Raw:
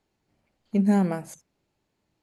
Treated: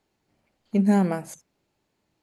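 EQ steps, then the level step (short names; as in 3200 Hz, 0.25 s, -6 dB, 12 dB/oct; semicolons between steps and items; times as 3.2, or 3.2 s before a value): low shelf 140 Hz -4.5 dB; +2.5 dB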